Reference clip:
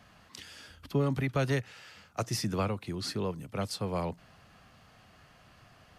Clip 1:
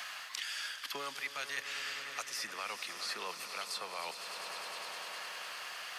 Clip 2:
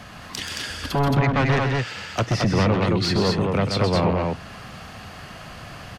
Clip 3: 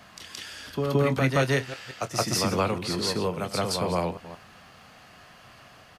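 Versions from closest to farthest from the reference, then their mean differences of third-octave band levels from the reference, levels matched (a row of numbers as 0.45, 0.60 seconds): 3, 2, 1; 5.0, 7.5, 16.5 decibels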